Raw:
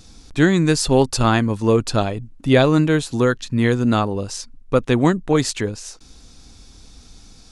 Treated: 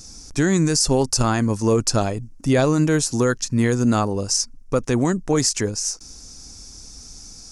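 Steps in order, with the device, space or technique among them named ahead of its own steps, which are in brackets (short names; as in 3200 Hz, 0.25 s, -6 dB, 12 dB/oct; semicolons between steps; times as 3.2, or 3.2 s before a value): over-bright horn tweeter (resonant high shelf 4500 Hz +7 dB, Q 3; limiter -8.5 dBFS, peak gain reduction 11 dB)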